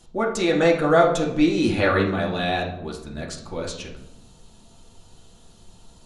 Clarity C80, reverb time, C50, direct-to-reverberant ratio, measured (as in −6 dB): 10.0 dB, 0.80 s, 6.5 dB, −3.0 dB